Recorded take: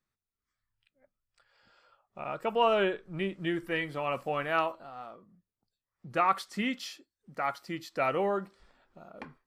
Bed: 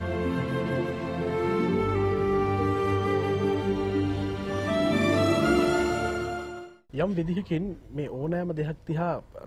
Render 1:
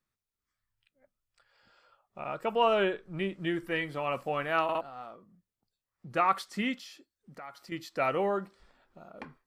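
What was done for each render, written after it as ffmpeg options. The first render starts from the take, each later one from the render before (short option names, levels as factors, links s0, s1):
-filter_complex "[0:a]asettb=1/sr,asplit=3[s0][s1][s2];[s0]atrim=end=6.744[s3];[s1]atrim=start=6.74:end=7.72,asetpts=PTS-STARTPTS,afade=t=in:d=0.004:c=qsin,afade=t=out:st=0.976:d=0.004:c=qsin,acompressor=threshold=0.00447:ratio=2.5:attack=3.2:release=140:knee=1:detection=peak[s4];[s2]atrim=start=7.716[s5];[s3][s4]acrossfade=d=0.004:c1=hsin:c2=qsin[s6];[s6][s5]acrossfade=d=0.004:c1=qsin:c2=hsin,asplit=4[s7][s8][s9][s10];[s7]atrim=end=4.692[s11];[s8]atrim=start=4.628:end=4.692[s12];[s9]atrim=start=4.628:end=4.692[s13];[s10]atrim=start=4.808[s14];[s11][s12]acrossfade=d=0.004:c1=hsin:c2=hsin[s15];[s15][s13]acrossfade=d=0.004:c1=hsin:c2=hsin[s16];[s16][s14]acrossfade=d=0.004:c1=hsin:c2=hsin"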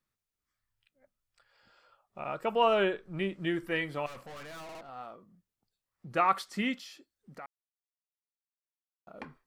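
-filter_complex "[0:a]asettb=1/sr,asplit=3[s0][s1][s2];[s0]atrim=end=4.064[s3];[s1]atrim=start=4.06:end=4.89,asetpts=PTS-STARTPTS,afade=t=in:d=0.004:c=qsin,afade=t=out:st=0.826:d=0.004:c=qsin,aeval=exprs='(tanh(158*val(0)+0.4)-tanh(0.4))/158':c=same[s4];[s2]atrim=start=4.886[s5];[s3][s4]acrossfade=d=0.004:c1=hsin:c2=qsin[s6];[s6][s5]acrossfade=d=0.004:c1=qsin:c2=hsin,asplit=3[s7][s8][s9];[s7]atrim=end=7.46,asetpts=PTS-STARTPTS,afade=t=out:st=7.456:d=0.004:c=hsin[s10];[s8]atrim=start=7.46:end=9.07,asetpts=PTS-STARTPTS,volume=0[s11];[s9]atrim=start=9.07,asetpts=PTS-STARTPTS,afade=t=in:d=0.004:c=hsin[s12];[s10][s11][s12]concat=n=3:v=0:a=1"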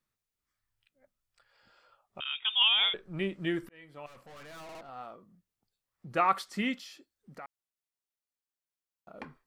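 -filter_complex "[0:a]asettb=1/sr,asplit=3[s0][s1][s2];[s0]atrim=end=2.204[s3];[s1]atrim=start=2.2:end=2.94,asetpts=PTS-STARTPTS,afade=t=in:d=0.004:c=qsin,afade=t=out:st=0.736:d=0.004:c=qsin,lowpass=f=3200:t=q:w=0.5098,lowpass=f=3200:t=q:w=0.6013,lowpass=f=3200:t=q:w=0.9,lowpass=f=3200:t=q:w=2.563,afreqshift=-3800[s4];[s2]atrim=start=2.936[s5];[s3][s4]acrossfade=d=0.004:c1=hsin:c2=qsin[s6];[s6][s5]acrossfade=d=0.004:c1=qsin:c2=hsin,asplit=2[s7][s8];[s7]atrim=end=3.69,asetpts=PTS-STARTPTS,afade=t=out:st=3.686:d=0.004:c=hsin[s9];[s8]atrim=start=3.69,asetpts=PTS-STARTPTS,afade=t=in:d=1.13[s10];[s9][s10]concat=n=2:v=0:a=1"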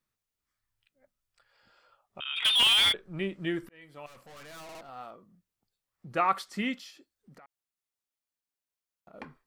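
-filter_complex "[0:a]asplit=3[s0][s1][s2];[s0]afade=t=out:st=2.36:d=0.02[s3];[s1]asplit=2[s4][s5];[s5]highpass=f=720:p=1,volume=31.6,asoftclip=type=tanh:threshold=0.211[s6];[s4][s6]amix=inputs=2:normalize=0,lowpass=f=2700:p=1,volume=0.501,afade=t=in:st=2.36:d=0.02,afade=t=out:st=2.91:d=0.02[s7];[s2]afade=t=in:st=2.91:d=0.02[s8];[s3][s7][s8]amix=inputs=3:normalize=0,asettb=1/sr,asplit=3[s9][s10][s11];[s9]atrim=end=3.814[s12];[s10]atrim=start=3.81:end=5.11,asetpts=PTS-STARTPTS,afade=t=in:d=0.004:c=qsin,afade=t=out:st=1.296:d=0.004:c=qsin,highshelf=f=4100:g=6.5[s13];[s11]atrim=start=5.106[s14];[s12][s13]acrossfade=d=0.004:c1=hsin:c2=qsin[s15];[s15][s14]acrossfade=d=0.004:c1=qsin:c2=hsin,asettb=1/sr,asplit=3[s16][s17][s18];[s16]atrim=end=6.904[s19];[s17]atrim=start=6.9:end=9.13,asetpts=PTS-STARTPTS,afade=t=in:d=0.004:c=qsin,afade=t=out:st=2.226:d=0.004:c=qsin,acompressor=threshold=0.00316:ratio=6:attack=3.2:release=140:knee=1:detection=peak[s20];[s18]atrim=start=9.126[s21];[s19][s20]acrossfade=d=0.004:c1=hsin:c2=qsin[s22];[s22][s21]acrossfade=d=0.004:c1=qsin:c2=hsin"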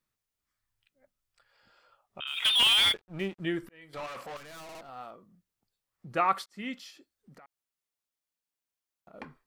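-filter_complex "[0:a]asettb=1/sr,asplit=3[s0][s1][s2];[s0]atrim=end=2.274[s3];[s1]atrim=start=2.27:end=3.4,asetpts=PTS-STARTPTS,afade=t=in:d=0.004:c=qsin,afade=t=out:st=1.126:d=0.004:c=qsin,aeval=exprs='sgn(val(0))*max(abs(val(0))-0.00355,0)':c=same[s4];[s2]atrim=start=3.396[s5];[s3][s4]acrossfade=d=0.004:c1=hsin:c2=qsin[s6];[s6][s5]acrossfade=d=0.004:c1=qsin:c2=hsin,asettb=1/sr,asplit=3[s7][s8][s9];[s7]atrim=end=3.934[s10];[s8]atrim=start=3.93:end=4.37,asetpts=PTS-STARTPTS,afade=t=in:d=0.004:c=qsin,afade=t=out:st=0.436:d=0.004:c=qsin,asplit=2[s11][s12];[s12]highpass=f=720:p=1,volume=17.8,asoftclip=type=tanh:threshold=0.0299[s13];[s11][s13]amix=inputs=2:normalize=0,lowpass=f=3500:p=1,volume=0.501[s14];[s9]atrim=start=4.366[s15];[s10][s14]acrossfade=d=0.004:c1=hsin:c2=qsin[s16];[s16][s15]acrossfade=d=0.004:c1=qsin:c2=hsin,asplit=2[s17][s18];[s17]atrim=end=6.46,asetpts=PTS-STARTPTS,afade=t=out:st=6.456:d=0.004:c=hsin[s19];[s18]atrim=start=6.46,asetpts=PTS-STARTPTS,afade=t=in:d=0.4[s20];[s19][s20]concat=n=2:v=0:a=1"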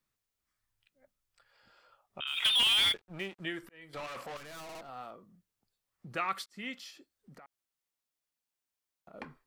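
-filter_complex "[0:a]acrossover=split=460|1500|6300[s0][s1][s2][s3];[s0]acompressor=threshold=0.00562:ratio=4[s4];[s1]acompressor=threshold=0.00708:ratio=4[s5];[s2]acompressor=threshold=0.0562:ratio=4[s6];[s3]acompressor=threshold=0.00794:ratio=4[s7];[s4][s5][s6][s7]amix=inputs=4:normalize=0"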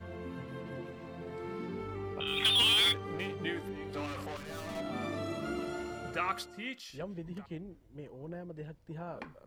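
-filter_complex "[1:a]volume=0.188[s0];[0:a][s0]amix=inputs=2:normalize=0"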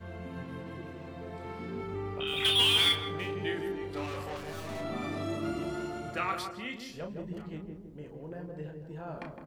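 -filter_complex "[0:a]asplit=2[s0][s1];[s1]adelay=33,volume=0.501[s2];[s0][s2]amix=inputs=2:normalize=0,asplit=2[s3][s4];[s4]adelay=161,lowpass=f=870:p=1,volume=0.668,asplit=2[s5][s6];[s6]adelay=161,lowpass=f=870:p=1,volume=0.48,asplit=2[s7][s8];[s8]adelay=161,lowpass=f=870:p=1,volume=0.48,asplit=2[s9][s10];[s10]adelay=161,lowpass=f=870:p=1,volume=0.48,asplit=2[s11][s12];[s12]adelay=161,lowpass=f=870:p=1,volume=0.48,asplit=2[s13][s14];[s14]adelay=161,lowpass=f=870:p=1,volume=0.48[s15];[s3][s5][s7][s9][s11][s13][s15]amix=inputs=7:normalize=0"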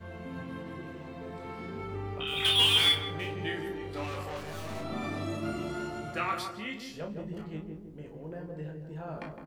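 -af "aecho=1:1:19|64:0.447|0.141"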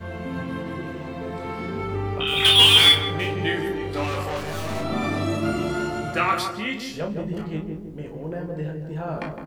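-af "volume=3.16"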